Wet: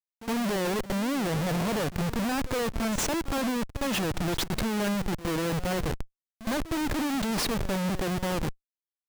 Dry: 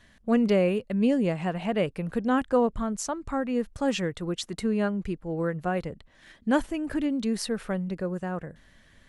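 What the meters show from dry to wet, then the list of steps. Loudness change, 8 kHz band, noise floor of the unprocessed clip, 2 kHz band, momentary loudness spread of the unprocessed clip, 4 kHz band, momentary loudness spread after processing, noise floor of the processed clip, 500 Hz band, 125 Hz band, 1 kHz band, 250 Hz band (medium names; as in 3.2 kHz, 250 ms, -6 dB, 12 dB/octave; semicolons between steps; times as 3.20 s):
-1.5 dB, +5.5 dB, -58 dBFS, +2.5 dB, 9 LU, +5.5 dB, 4 LU, under -85 dBFS, -4.0 dB, +2.0 dB, +0.5 dB, -2.5 dB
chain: Schmitt trigger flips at -36 dBFS; pre-echo 64 ms -15 dB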